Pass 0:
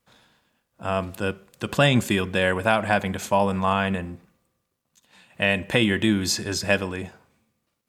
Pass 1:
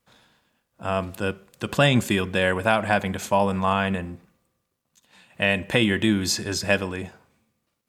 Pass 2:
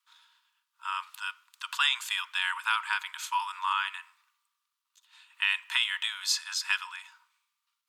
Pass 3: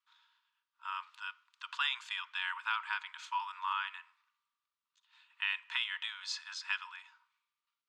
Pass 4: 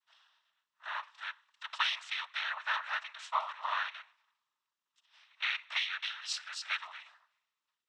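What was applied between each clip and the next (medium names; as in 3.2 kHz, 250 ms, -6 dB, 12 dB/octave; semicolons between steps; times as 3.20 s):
no audible change
rippled Chebyshev high-pass 910 Hz, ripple 6 dB
distance through air 130 m; trim -5.5 dB
noise-vocoded speech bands 12; trim +2 dB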